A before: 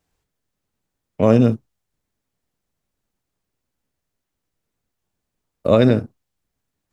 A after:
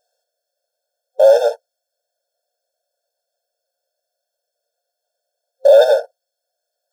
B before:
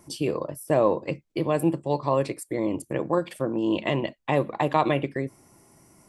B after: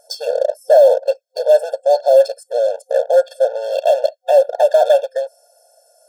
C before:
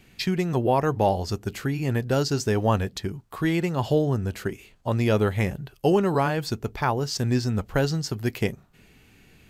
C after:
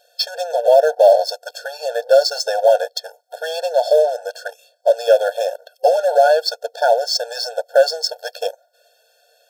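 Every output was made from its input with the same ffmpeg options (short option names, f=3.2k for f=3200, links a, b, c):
-filter_complex "[0:a]acrossover=split=8000[a][b];[b]acompressor=threshold=-57dB:ratio=4:attack=1:release=60[c];[a][c]amix=inputs=2:normalize=0,superequalizer=8b=2.24:9b=0.355:14b=1.78,asplit=2[d][e];[e]acrusher=bits=4:mix=0:aa=0.5,volume=-8dB[f];[d][f]amix=inputs=2:normalize=0,apsyclip=12dB,aeval=exprs='1.06*(cos(1*acos(clip(val(0)/1.06,-1,1)))-cos(1*PI/2))+0.0422*(cos(7*acos(clip(val(0)/1.06,-1,1)))-cos(7*PI/2))':c=same,asuperstop=centerf=2200:order=4:qfactor=1.4,afftfilt=real='re*eq(mod(floor(b*sr/1024/460),2),1)':imag='im*eq(mod(floor(b*sr/1024/460),2),1)':win_size=1024:overlap=0.75,volume=-3dB"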